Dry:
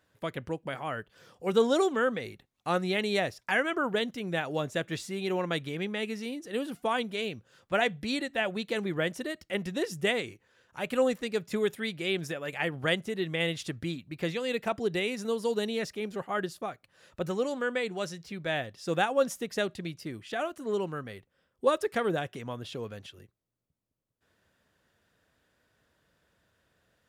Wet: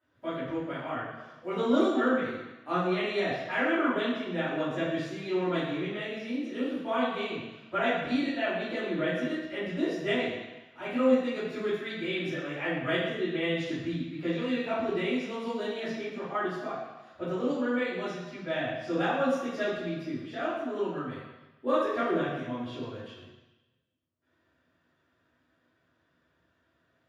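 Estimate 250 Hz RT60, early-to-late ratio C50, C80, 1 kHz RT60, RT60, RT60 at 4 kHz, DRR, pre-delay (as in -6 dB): 1.0 s, -0.5 dB, 2.5 dB, 1.1 s, 1.1 s, 1.2 s, -14.5 dB, 3 ms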